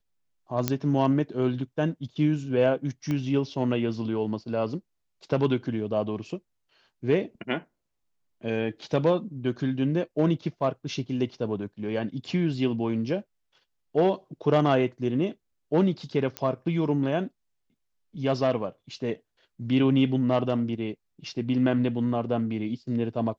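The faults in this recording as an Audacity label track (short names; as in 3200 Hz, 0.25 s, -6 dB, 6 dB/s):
0.680000	0.680000	pop -8 dBFS
3.110000	3.110000	pop -18 dBFS
16.370000	16.370000	pop -15 dBFS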